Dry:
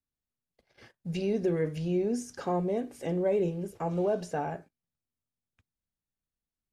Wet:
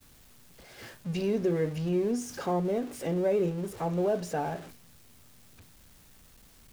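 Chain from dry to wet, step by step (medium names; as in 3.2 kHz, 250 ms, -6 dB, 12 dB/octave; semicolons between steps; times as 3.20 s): jump at every zero crossing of -41.5 dBFS; expander -45 dBFS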